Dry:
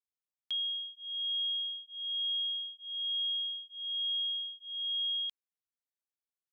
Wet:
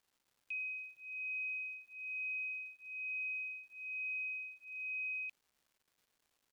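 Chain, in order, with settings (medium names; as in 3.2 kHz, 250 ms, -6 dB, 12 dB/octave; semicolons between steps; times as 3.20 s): elliptic high-pass 2.9 kHz, stop band 50 dB; pitch shift -4.5 st; crackle 570 per s -58 dBFS; trim -6.5 dB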